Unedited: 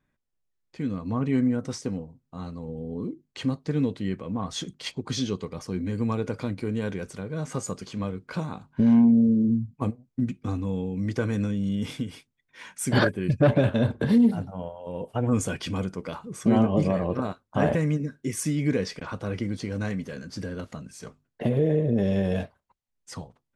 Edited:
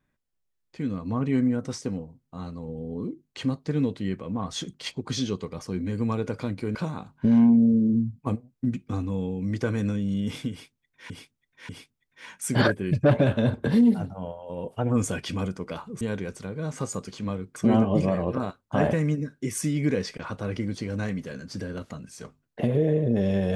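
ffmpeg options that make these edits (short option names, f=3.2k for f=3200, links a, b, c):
-filter_complex "[0:a]asplit=6[a][b][c][d][e][f];[a]atrim=end=6.752[g];[b]atrim=start=8.298:end=12.652[h];[c]atrim=start=12.058:end=12.652[i];[d]atrim=start=12.058:end=16.382[j];[e]atrim=start=6.748:end=8.302[k];[f]atrim=start=16.378[l];[g][h]acrossfade=d=0.004:c1=hsin:c2=hsin[m];[m][i]acrossfade=d=0.004:c1=hsin:c2=hsin[n];[n][j]acrossfade=d=0.004:c1=hsin:c2=hsin[o];[o][k]acrossfade=d=0.004:c1=hsin:c2=hsin[p];[p][l]acrossfade=d=0.004:c1=hsin:c2=hsin"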